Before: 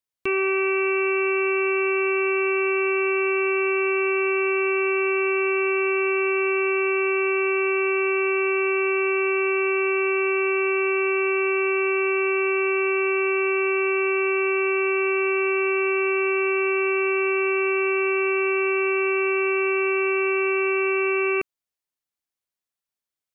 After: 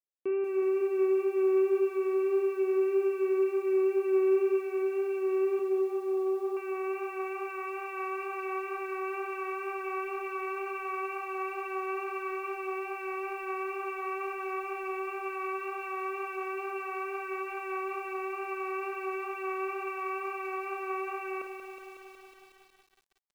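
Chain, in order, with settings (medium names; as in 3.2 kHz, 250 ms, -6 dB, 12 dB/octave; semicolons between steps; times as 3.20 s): 5.59–6.57 s: elliptic band-pass 180–1100 Hz, stop band 40 dB; band-pass sweep 430 Hz -> 860 Hz, 5.23–7.69 s; wow and flutter 26 cents; on a send: early reflections 28 ms -11.5 dB, 50 ms -11.5 dB; on the sum: bit-crushed delay 184 ms, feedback 80%, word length 9-bit, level -8 dB; trim -3.5 dB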